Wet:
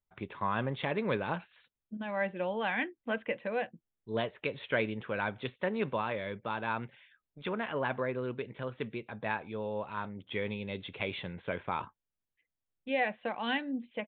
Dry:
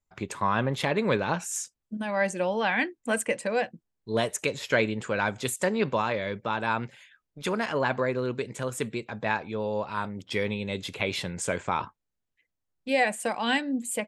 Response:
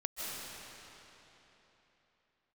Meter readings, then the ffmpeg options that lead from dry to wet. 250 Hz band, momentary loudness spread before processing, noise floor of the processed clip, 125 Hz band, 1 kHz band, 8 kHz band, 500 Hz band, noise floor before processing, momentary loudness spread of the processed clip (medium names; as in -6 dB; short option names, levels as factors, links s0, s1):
-6.5 dB, 7 LU, under -85 dBFS, -6.5 dB, -6.5 dB, under -40 dB, -6.5 dB, -83 dBFS, 8 LU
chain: -af "aresample=8000,aresample=44100,volume=0.473"